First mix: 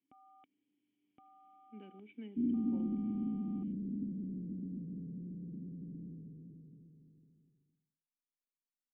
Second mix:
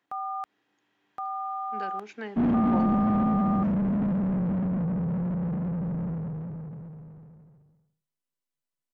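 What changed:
second sound: remove transistor ladder low-pass 460 Hz, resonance 50%
master: remove formant resonators in series i

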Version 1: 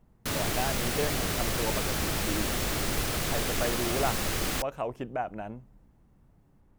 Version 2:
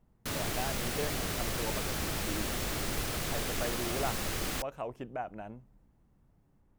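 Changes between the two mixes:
speech −5.5 dB
background −4.5 dB

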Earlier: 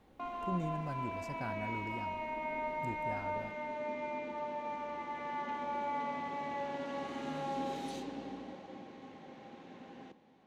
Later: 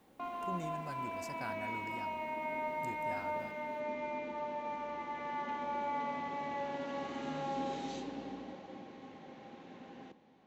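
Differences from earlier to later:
speech: add spectral tilt +2.5 dB per octave
background: add linear-phase brick-wall low-pass 7,800 Hz

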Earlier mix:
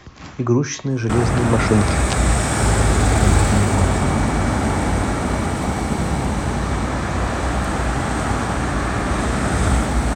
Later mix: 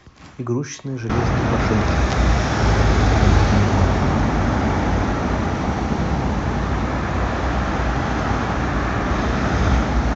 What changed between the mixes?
speech −5.5 dB
first sound: add Butterworth low-pass 6,500 Hz 96 dB per octave
second sound −7.0 dB

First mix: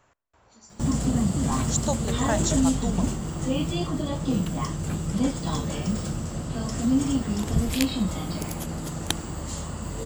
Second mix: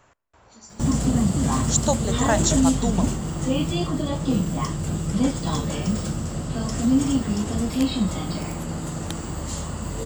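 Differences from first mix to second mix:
speech +5.5 dB
first sound +3.0 dB
second sound −9.5 dB

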